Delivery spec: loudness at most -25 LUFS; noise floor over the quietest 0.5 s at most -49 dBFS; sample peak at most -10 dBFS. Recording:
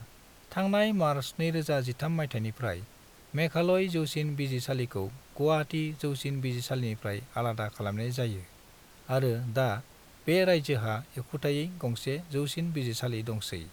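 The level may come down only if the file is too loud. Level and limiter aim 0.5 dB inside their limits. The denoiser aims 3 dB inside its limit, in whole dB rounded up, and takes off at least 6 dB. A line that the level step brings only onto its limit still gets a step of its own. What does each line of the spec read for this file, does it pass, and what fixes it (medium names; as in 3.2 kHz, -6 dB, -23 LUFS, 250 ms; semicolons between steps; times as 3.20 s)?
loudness -31.0 LUFS: pass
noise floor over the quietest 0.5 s -55 dBFS: pass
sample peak -13.5 dBFS: pass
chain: none needed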